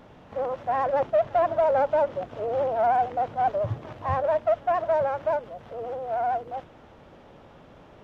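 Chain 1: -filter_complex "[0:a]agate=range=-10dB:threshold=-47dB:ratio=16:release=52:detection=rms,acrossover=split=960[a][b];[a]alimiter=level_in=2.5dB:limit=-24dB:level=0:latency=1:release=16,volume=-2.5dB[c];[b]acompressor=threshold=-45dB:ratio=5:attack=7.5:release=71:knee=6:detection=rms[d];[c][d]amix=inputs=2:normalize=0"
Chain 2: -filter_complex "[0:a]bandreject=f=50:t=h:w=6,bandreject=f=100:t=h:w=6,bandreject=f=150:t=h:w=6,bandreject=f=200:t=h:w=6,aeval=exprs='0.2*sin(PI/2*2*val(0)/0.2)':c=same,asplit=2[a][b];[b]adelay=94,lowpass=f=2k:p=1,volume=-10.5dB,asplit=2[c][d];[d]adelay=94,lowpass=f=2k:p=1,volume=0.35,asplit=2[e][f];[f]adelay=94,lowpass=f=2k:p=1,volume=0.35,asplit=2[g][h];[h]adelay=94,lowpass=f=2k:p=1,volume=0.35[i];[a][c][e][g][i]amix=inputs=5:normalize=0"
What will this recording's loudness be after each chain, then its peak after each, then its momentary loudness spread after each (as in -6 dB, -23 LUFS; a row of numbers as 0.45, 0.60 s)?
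-33.0, -19.5 LUFS; -24.0, -11.0 dBFS; 5, 8 LU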